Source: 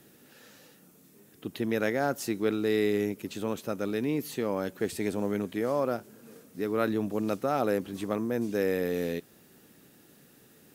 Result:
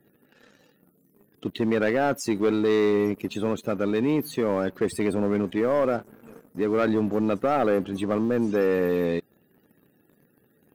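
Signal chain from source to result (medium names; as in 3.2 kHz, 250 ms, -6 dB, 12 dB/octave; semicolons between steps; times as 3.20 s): loudest bins only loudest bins 64; waveshaping leveller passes 2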